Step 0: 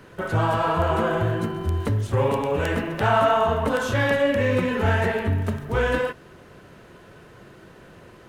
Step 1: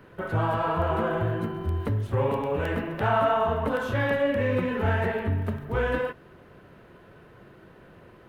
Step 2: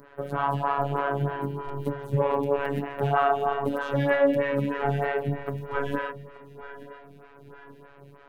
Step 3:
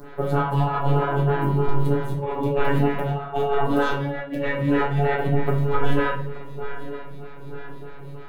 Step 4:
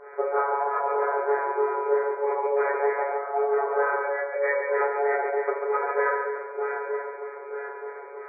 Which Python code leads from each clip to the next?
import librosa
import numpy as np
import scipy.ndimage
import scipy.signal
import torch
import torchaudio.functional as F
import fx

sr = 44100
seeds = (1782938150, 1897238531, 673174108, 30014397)

y1 = fx.peak_eq(x, sr, hz=7000.0, db=-12.0, octaves=1.5)
y1 = F.gain(torch.from_numpy(y1), -3.5).numpy()
y2 = fx.robotise(y1, sr, hz=141.0)
y2 = fx.echo_feedback(y2, sr, ms=878, feedback_pct=42, wet_db=-15.5)
y2 = fx.stagger_phaser(y2, sr, hz=3.2)
y2 = F.gain(torch.from_numpy(y2), 5.0).numpy()
y3 = fx.over_compress(y2, sr, threshold_db=-28.0, ratio=-0.5)
y3 = fx.room_shoebox(y3, sr, seeds[0], volume_m3=49.0, walls='mixed', distance_m=0.87)
y3 = F.gain(torch.from_numpy(y3), 2.0).numpy()
y4 = fx.brickwall_bandpass(y3, sr, low_hz=370.0, high_hz=2400.0)
y4 = fx.rider(y4, sr, range_db=4, speed_s=0.5)
y4 = fx.echo_feedback(y4, sr, ms=141, feedback_pct=42, wet_db=-7.0)